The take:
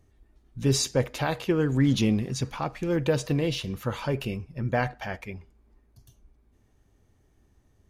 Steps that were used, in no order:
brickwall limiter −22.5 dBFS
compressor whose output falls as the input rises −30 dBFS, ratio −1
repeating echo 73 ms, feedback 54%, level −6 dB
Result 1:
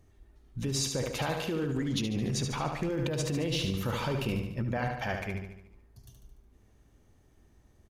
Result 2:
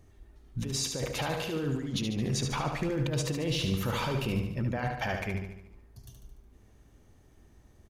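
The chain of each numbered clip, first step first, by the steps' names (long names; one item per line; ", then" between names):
brickwall limiter, then repeating echo, then compressor whose output falls as the input rises
compressor whose output falls as the input rises, then brickwall limiter, then repeating echo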